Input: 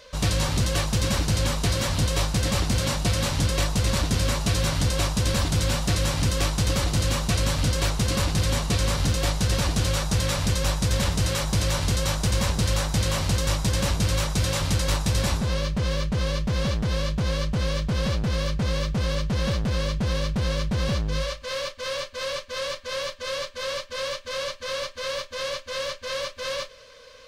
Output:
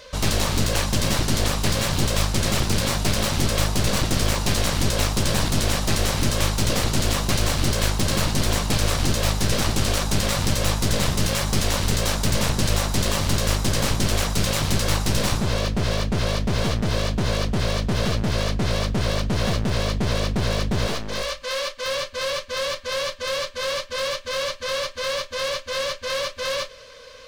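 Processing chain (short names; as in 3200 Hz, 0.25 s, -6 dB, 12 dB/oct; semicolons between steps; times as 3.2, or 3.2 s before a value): one-sided fold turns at -27 dBFS; 20.87–21.86 bell 82 Hz -15 dB 2.1 oct; gain +4.5 dB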